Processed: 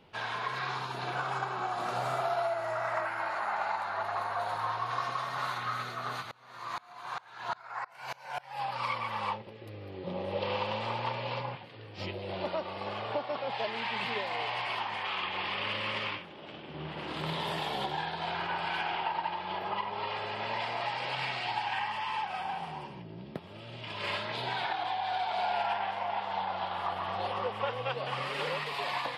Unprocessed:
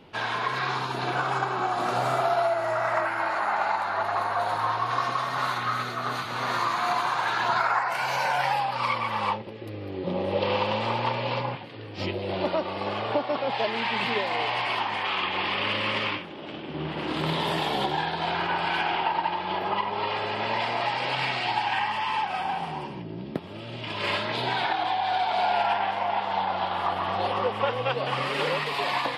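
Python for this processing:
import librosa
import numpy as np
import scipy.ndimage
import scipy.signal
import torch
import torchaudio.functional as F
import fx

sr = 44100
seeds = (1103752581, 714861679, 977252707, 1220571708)

y = fx.peak_eq(x, sr, hz=290.0, db=-6.0, octaves=0.77)
y = fx.tremolo_decay(y, sr, direction='swelling', hz=fx.line((6.21, 1.9), (8.6, 4.4)), depth_db=28, at=(6.21, 8.6), fade=0.02)
y = F.gain(torch.from_numpy(y), -6.5).numpy()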